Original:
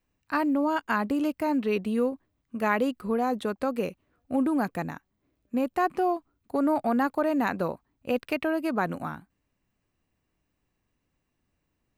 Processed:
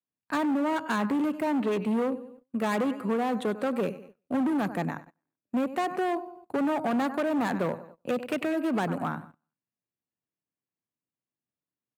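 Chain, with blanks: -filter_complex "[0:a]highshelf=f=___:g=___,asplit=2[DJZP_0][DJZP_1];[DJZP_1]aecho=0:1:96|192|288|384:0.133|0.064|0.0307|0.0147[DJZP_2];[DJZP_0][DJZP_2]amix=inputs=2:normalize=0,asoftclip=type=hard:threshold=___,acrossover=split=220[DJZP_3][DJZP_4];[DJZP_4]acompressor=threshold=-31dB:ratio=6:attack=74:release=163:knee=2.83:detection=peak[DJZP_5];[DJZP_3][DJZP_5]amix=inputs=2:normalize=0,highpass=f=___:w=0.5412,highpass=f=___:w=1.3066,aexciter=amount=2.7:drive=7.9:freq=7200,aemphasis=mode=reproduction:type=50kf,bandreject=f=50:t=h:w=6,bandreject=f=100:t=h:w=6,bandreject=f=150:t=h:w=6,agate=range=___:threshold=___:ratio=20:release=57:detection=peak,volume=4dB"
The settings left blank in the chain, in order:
7300, -8, -27dB, 110, 110, -22dB, -58dB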